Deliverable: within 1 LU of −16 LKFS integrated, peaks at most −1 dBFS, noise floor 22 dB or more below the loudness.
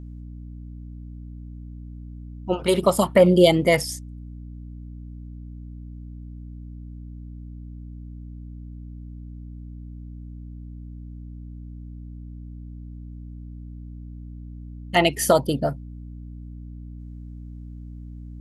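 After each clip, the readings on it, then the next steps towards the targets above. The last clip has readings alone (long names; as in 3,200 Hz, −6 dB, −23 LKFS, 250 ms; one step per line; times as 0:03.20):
mains hum 60 Hz; hum harmonics up to 300 Hz; level of the hum −35 dBFS; integrated loudness −20.0 LKFS; sample peak −2.5 dBFS; target loudness −16.0 LKFS
→ mains-hum notches 60/120/180/240/300 Hz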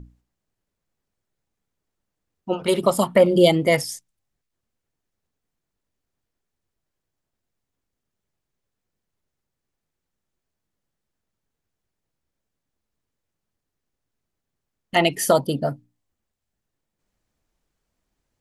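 mains hum none found; integrated loudness −20.0 LKFS; sample peak −3.0 dBFS; target loudness −16.0 LKFS
→ level +4 dB
brickwall limiter −1 dBFS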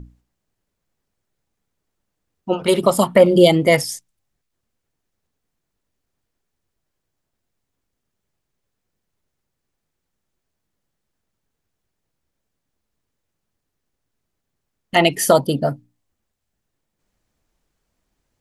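integrated loudness −16.0 LKFS; sample peak −1.0 dBFS; background noise floor −79 dBFS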